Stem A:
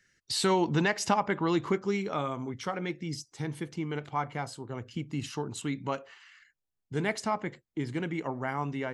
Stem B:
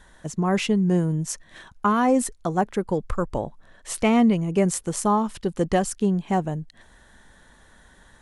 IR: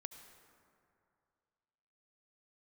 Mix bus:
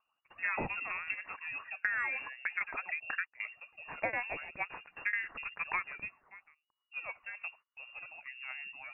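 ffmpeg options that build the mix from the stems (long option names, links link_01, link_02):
-filter_complex "[0:a]aphaser=in_gain=1:out_gain=1:delay=2.5:decay=0.62:speed=0.94:type=triangular,volume=-14.5dB,asplit=2[link_01][link_02];[1:a]agate=range=-18dB:threshold=-42dB:ratio=16:detection=peak,highpass=1200,volume=2.5dB[link_03];[link_02]apad=whole_len=362166[link_04];[link_03][link_04]sidechaingate=range=-23dB:threshold=-56dB:ratio=16:detection=peak[link_05];[link_01][link_05]amix=inputs=2:normalize=0,lowpass=frequency=2500:width_type=q:width=0.5098,lowpass=frequency=2500:width_type=q:width=0.6013,lowpass=frequency=2500:width_type=q:width=0.9,lowpass=frequency=2500:width_type=q:width=2.563,afreqshift=-2900,acompressor=threshold=-30dB:ratio=6"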